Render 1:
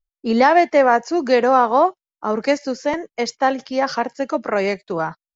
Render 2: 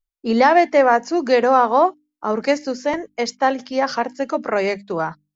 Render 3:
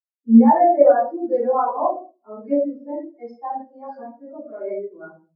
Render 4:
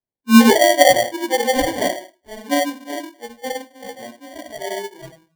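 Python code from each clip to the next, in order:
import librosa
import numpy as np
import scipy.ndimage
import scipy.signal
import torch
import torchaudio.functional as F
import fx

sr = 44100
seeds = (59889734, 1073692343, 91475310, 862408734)

y1 = fx.hum_notches(x, sr, base_hz=50, count=6)
y2 = fx.room_shoebox(y1, sr, seeds[0], volume_m3=250.0, walls='mixed', distance_m=3.3)
y2 = fx.spectral_expand(y2, sr, expansion=2.5)
y2 = F.gain(torch.from_numpy(y2), -10.5).numpy()
y3 = fx.sample_hold(y2, sr, seeds[1], rate_hz=1300.0, jitter_pct=0)
y3 = F.gain(torch.from_numpy(y3), 1.0).numpy()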